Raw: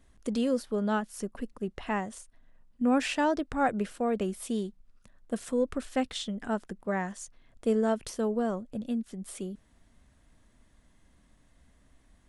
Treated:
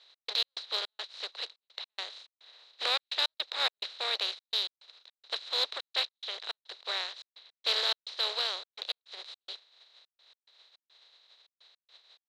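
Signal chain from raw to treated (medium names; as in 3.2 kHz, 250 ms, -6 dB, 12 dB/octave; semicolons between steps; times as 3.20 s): spectral contrast reduction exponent 0.29; four-pole ladder low-pass 4.1 kHz, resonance 85%; in parallel at -9 dB: saturation -31 dBFS, distortion -11 dB; on the sum: steep high-pass 430 Hz 36 dB/octave; trance gate "x.x.xx.xxx" 106 bpm -60 dB; trim +3.5 dB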